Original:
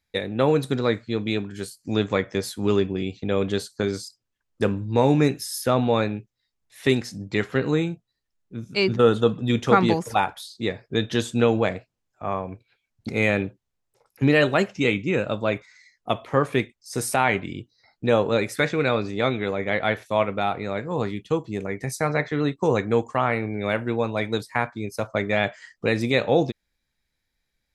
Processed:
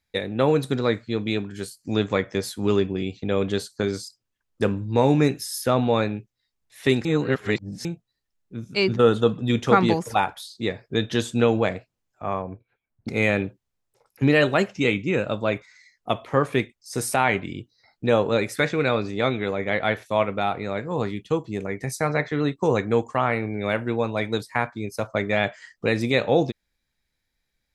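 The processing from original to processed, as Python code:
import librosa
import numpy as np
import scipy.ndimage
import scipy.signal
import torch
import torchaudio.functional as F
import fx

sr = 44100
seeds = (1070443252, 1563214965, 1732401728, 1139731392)

y = fx.lowpass(x, sr, hz=1400.0, slope=12, at=(12.42, 13.08))
y = fx.edit(y, sr, fx.reverse_span(start_s=7.05, length_s=0.8), tone=tone)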